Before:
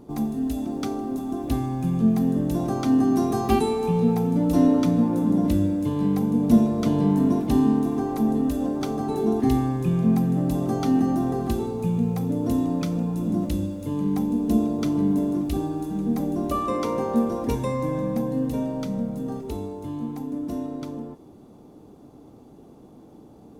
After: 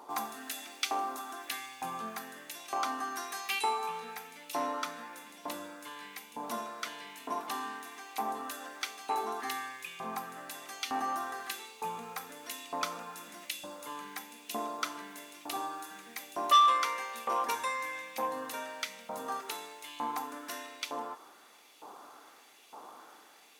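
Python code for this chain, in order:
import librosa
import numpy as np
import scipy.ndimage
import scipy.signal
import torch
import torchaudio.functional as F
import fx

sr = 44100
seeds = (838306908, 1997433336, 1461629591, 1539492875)

y = fx.rider(x, sr, range_db=10, speed_s=2.0)
y = fx.filter_lfo_highpass(y, sr, shape='saw_up', hz=1.1, low_hz=920.0, high_hz=2600.0, q=2.3)
y = fx.transformer_sat(y, sr, knee_hz=2000.0)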